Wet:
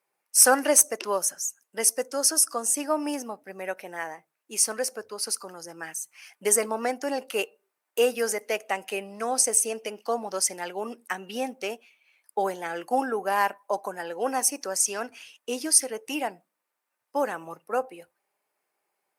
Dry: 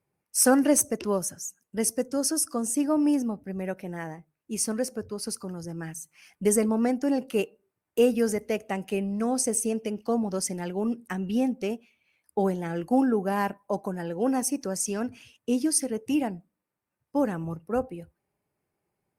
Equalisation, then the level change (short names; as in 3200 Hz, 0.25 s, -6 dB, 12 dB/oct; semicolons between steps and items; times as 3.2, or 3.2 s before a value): HPF 670 Hz 12 dB/oct; +6.0 dB